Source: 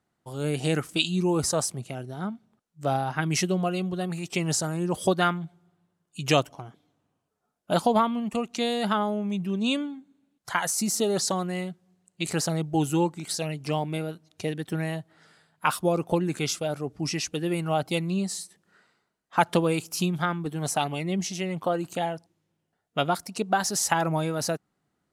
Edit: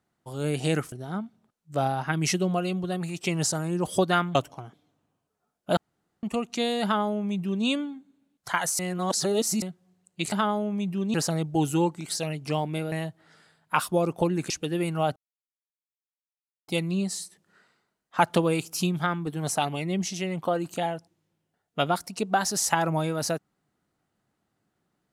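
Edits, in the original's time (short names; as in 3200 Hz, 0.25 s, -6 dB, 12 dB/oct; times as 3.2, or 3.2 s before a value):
0.92–2.01 cut
5.44–6.36 cut
7.78–8.24 room tone
8.84–9.66 copy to 12.33
10.8–11.63 reverse
14.11–14.83 cut
16.41–17.21 cut
17.87 insert silence 1.52 s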